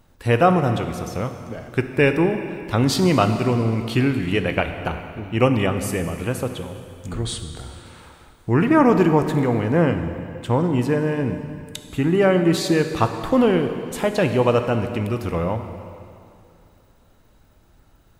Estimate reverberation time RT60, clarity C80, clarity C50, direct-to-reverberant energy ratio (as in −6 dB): 2.5 s, 9.0 dB, 8.0 dB, 7.0 dB